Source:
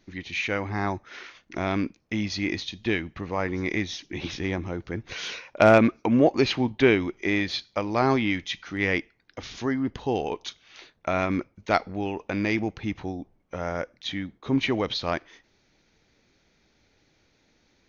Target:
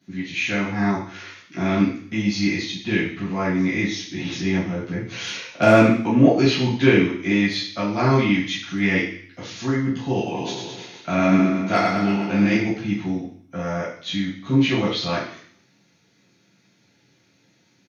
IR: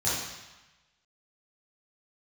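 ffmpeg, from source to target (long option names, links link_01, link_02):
-filter_complex "[0:a]highshelf=frequency=3200:gain=8,asplit=3[link_01][link_02][link_03];[link_01]afade=type=out:start_time=10.33:duration=0.02[link_04];[link_02]aecho=1:1:100|210|331|464.1|610.5:0.631|0.398|0.251|0.158|0.1,afade=type=in:start_time=10.33:duration=0.02,afade=type=out:start_time=12.54:duration=0.02[link_05];[link_03]afade=type=in:start_time=12.54:duration=0.02[link_06];[link_04][link_05][link_06]amix=inputs=3:normalize=0[link_07];[1:a]atrim=start_sample=2205,asetrate=79380,aresample=44100[link_08];[link_07][link_08]afir=irnorm=-1:irlink=0,volume=-4.5dB"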